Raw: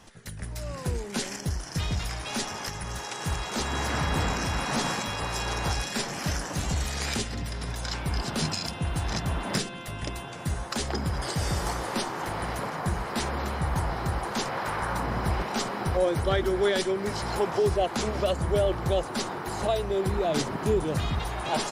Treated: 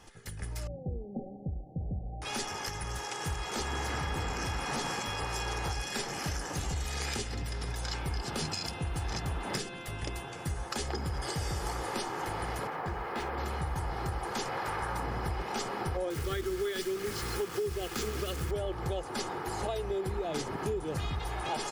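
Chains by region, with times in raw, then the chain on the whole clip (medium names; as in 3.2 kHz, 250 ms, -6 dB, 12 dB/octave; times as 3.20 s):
0.67–2.22 s: rippled Chebyshev low-pass 800 Hz, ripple 9 dB + bass shelf 400 Hz +4 dB
12.67–13.38 s: tone controls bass -6 dB, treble -10 dB + decimation joined by straight lines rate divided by 3×
16.10–18.51 s: high-order bell 740 Hz -10 dB 1 oct + hum notches 50/100/150/200/250 Hz + word length cut 6-bit, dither none
whole clip: band-stop 3.9 kHz, Q 18; comb 2.4 ms, depth 35%; compression, threshold -27 dBFS; trim -3 dB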